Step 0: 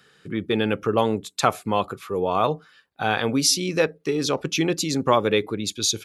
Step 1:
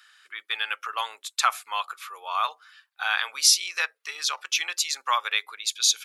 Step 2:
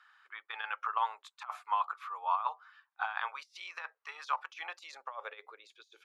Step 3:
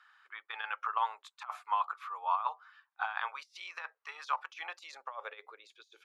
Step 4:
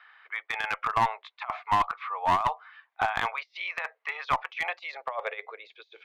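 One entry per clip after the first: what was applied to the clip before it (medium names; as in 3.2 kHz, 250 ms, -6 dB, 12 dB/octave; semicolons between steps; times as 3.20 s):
high-pass 1.1 kHz 24 dB/octave; trim +2 dB
compressor with a negative ratio -28 dBFS, ratio -0.5; band-pass sweep 930 Hz -> 370 Hz, 4.39–5.97 s
no audible change
cabinet simulation 310–3900 Hz, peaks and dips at 470 Hz +6 dB, 670 Hz +10 dB, 1.4 kHz -4 dB, 2.1 kHz +9 dB; one-sided clip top -29 dBFS; trim +7.5 dB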